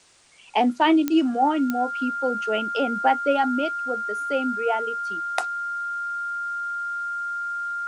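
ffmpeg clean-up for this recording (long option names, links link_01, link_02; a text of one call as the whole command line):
ffmpeg -i in.wav -af "adeclick=threshold=4,bandreject=frequency=1400:width=30,agate=range=-21dB:threshold=-21dB" out.wav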